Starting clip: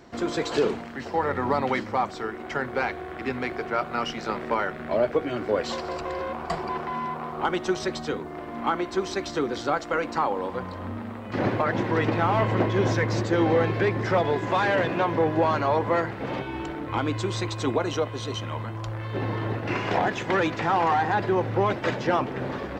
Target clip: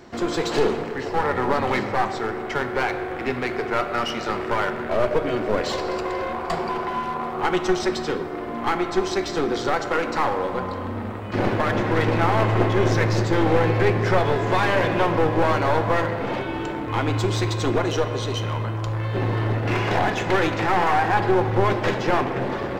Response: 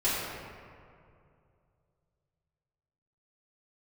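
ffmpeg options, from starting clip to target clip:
-filter_complex "[0:a]aeval=exprs='clip(val(0),-1,0.0447)':c=same,asplit=2[a][b];[1:a]atrim=start_sample=2205[c];[b][c]afir=irnorm=-1:irlink=0,volume=-16.5dB[d];[a][d]amix=inputs=2:normalize=0,volume=3dB"

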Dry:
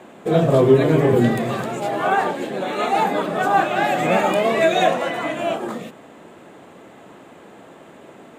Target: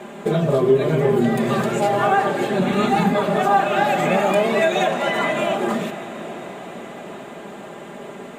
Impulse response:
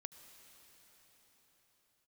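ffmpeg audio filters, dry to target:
-filter_complex "[0:a]asplit=3[a][b][c];[a]afade=t=out:st=2.58:d=0.02[d];[b]asubboost=boost=10:cutoff=200,afade=t=in:st=2.58:d=0.02,afade=t=out:st=3.13:d=0.02[e];[c]afade=t=in:st=3.13:d=0.02[f];[d][e][f]amix=inputs=3:normalize=0,acompressor=threshold=-25dB:ratio=3,asplit=2[g][h];[1:a]atrim=start_sample=2205,asetrate=29547,aresample=44100,adelay=5[i];[h][i]afir=irnorm=-1:irlink=0,volume=1.5dB[j];[g][j]amix=inputs=2:normalize=0,volume=5dB"

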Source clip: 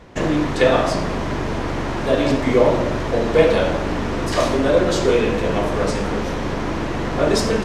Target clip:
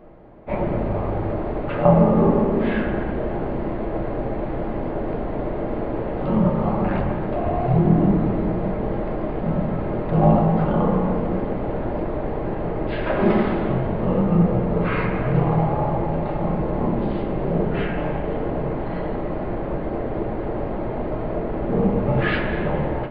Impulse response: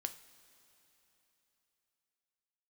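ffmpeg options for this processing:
-filter_complex "[0:a]equalizer=f=250:t=o:w=1:g=-10,equalizer=f=1k:t=o:w=1:g=4,equalizer=f=2k:t=o:w=1:g=8,asetrate=14597,aresample=44100[a];[1:a]atrim=start_sample=2205,asetrate=66150,aresample=44100[b];[a][b]afir=irnorm=-1:irlink=0,volume=3dB"

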